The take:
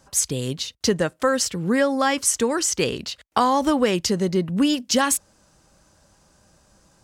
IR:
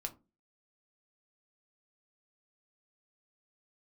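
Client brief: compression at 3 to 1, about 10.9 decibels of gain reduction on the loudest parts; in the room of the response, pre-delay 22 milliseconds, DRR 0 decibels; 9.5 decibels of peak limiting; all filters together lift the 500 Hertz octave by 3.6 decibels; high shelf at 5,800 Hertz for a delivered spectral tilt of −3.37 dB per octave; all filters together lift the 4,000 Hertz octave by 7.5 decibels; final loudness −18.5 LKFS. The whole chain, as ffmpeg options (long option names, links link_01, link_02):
-filter_complex "[0:a]equalizer=frequency=500:width_type=o:gain=4,equalizer=frequency=4000:width_type=o:gain=7.5,highshelf=frequency=5800:gain=6,acompressor=threshold=-27dB:ratio=3,alimiter=limit=-19.5dB:level=0:latency=1,asplit=2[link_01][link_02];[1:a]atrim=start_sample=2205,adelay=22[link_03];[link_02][link_03]afir=irnorm=-1:irlink=0,volume=1.5dB[link_04];[link_01][link_04]amix=inputs=2:normalize=0,volume=8dB"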